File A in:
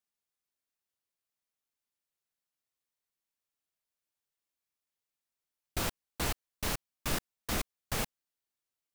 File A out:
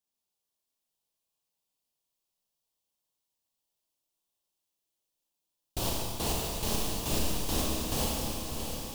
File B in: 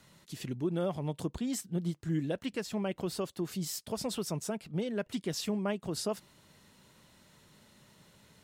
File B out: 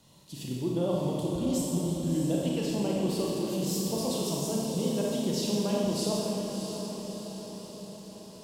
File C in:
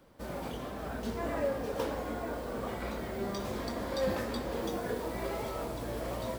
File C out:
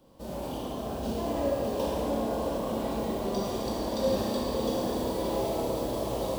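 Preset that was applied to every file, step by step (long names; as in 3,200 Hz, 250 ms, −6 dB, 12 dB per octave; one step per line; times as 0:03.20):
flat-topped bell 1,700 Hz −10.5 dB 1.1 octaves
feedback delay with all-pass diffusion 648 ms, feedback 57%, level −6.5 dB
four-comb reverb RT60 1.9 s, combs from 28 ms, DRR −3 dB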